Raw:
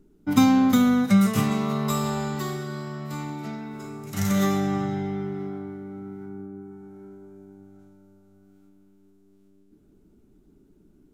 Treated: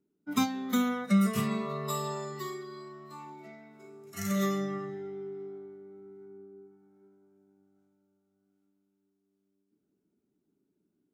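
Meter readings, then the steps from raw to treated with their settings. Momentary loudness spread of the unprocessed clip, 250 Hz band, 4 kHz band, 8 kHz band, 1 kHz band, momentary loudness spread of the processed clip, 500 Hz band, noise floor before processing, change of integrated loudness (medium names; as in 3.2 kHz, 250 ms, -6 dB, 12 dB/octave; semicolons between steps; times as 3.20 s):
19 LU, -9.5 dB, -6.5 dB, -6.0 dB, -7.5 dB, 23 LU, -5.0 dB, -59 dBFS, -7.5 dB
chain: high-pass 160 Hz 12 dB/octave; spectral noise reduction 13 dB; trim -4.5 dB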